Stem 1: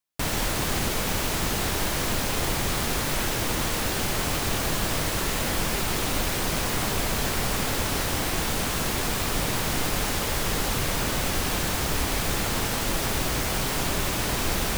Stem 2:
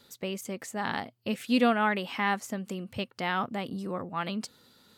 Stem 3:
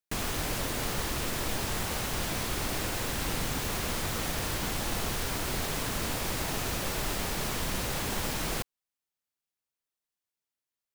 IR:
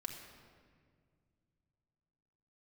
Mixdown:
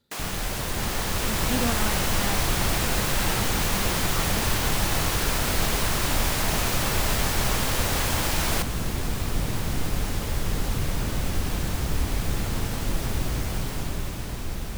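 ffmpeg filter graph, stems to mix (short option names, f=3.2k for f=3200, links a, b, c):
-filter_complex "[0:a]volume=-12.5dB[a];[1:a]volume=-14.5dB[b];[2:a]highpass=590,volume=1dB[c];[a][b][c]amix=inputs=3:normalize=0,lowshelf=f=240:g=12,dynaudnorm=f=170:g=13:m=5.5dB"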